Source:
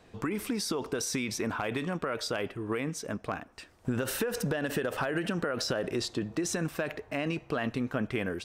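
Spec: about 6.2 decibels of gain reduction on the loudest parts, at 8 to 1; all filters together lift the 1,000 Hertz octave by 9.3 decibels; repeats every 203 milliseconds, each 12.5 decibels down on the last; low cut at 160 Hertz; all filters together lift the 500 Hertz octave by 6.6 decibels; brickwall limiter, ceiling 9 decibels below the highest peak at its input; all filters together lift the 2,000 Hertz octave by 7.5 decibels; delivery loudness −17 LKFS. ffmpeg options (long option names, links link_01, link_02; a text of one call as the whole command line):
ffmpeg -i in.wav -af "highpass=160,equalizer=frequency=500:width_type=o:gain=5.5,equalizer=frequency=1000:width_type=o:gain=9,equalizer=frequency=2000:width_type=o:gain=6,acompressor=threshold=-26dB:ratio=8,alimiter=limit=-21dB:level=0:latency=1,aecho=1:1:203|406|609:0.237|0.0569|0.0137,volume=16dB" out.wav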